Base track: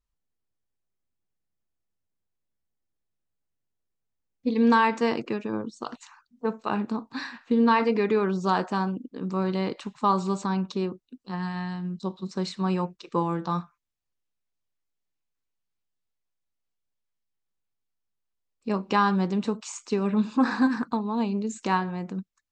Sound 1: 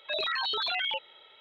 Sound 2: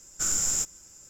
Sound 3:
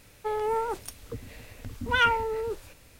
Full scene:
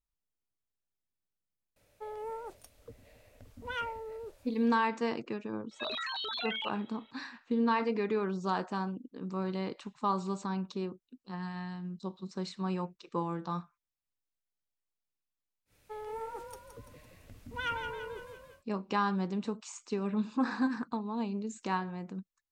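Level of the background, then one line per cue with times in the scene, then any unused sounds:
base track -8 dB
1.76 add 3 -15.5 dB + bell 600 Hz +11 dB 0.6 oct
5.71 add 1 -6.5 dB
15.65 add 3 -13 dB, fades 0.10 s + frequency-shifting echo 0.169 s, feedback 52%, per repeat +33 Hz, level -7 dB
not used: 2

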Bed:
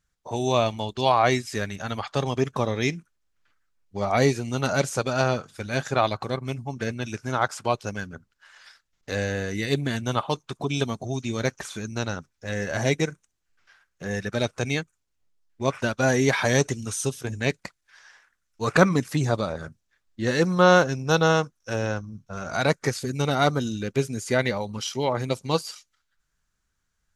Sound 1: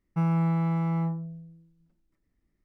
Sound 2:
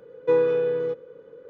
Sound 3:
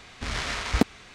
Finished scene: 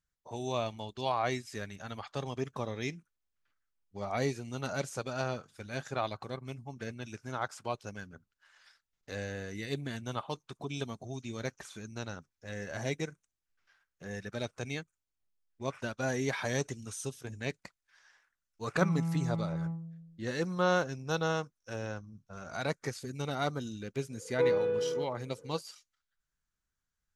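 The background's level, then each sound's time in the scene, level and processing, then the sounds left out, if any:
bed -11.5 dB
18.63 add 1 -14.5 dB + bell 180 Hz +7.5 dB
24.11 add 2 -7.5 dB
not used: 3

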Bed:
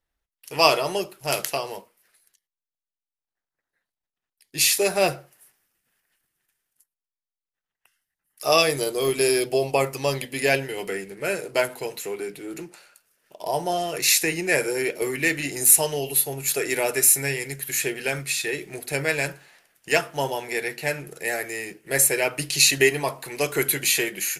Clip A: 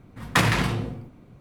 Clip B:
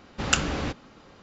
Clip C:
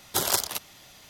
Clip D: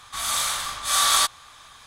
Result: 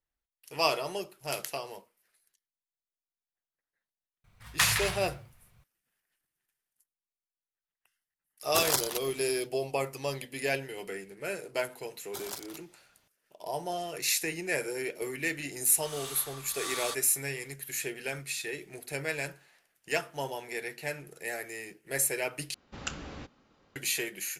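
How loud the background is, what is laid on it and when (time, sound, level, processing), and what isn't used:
bed -9.5 dB
4.24 add A -0.5 dB + passive tone stack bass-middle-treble 10-0-10
8.4 add C -3.5 dB, fades 0.10 s
11.99 add C -16 dB + mismatched tape noise reduction decoder only
15.68 add D -17 dB
22.54 replace with B -14 dB

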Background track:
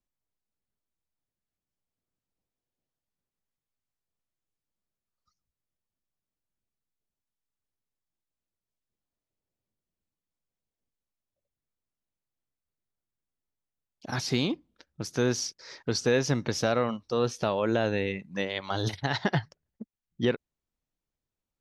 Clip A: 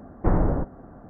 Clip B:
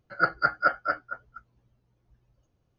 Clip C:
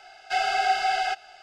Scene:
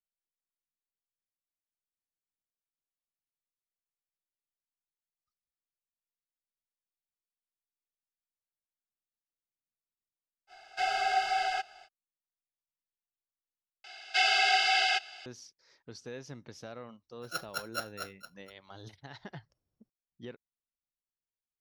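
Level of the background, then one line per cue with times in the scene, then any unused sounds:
background track -19 dB
10.47 add C -5.5 dB, fades 0.05 s
13.84 replace with C -5.5 dB + weighting filter D
17.12 add B -14 dB + sample sorter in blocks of 8 samples
not used: A

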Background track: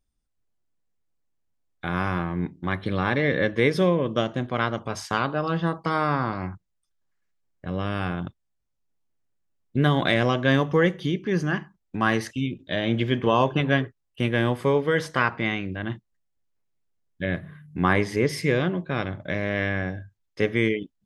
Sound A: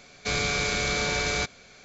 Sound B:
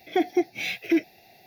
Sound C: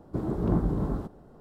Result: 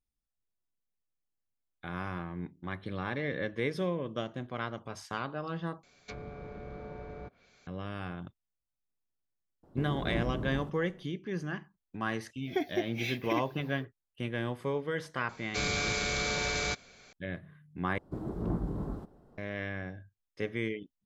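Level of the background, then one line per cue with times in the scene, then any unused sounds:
background track -11.5 dB
5.83 replace with A -12 dB + treble ducked by the level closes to 770 Hz, closed at -24.5 dBFS
9.63 add C -8.5 dB
12.4 add B -8.5 dB, fades 0.10 s + comb 7.5 ms, depth 63%
15.29 add A -5 dB
17.98 replace with C -7.5 dB

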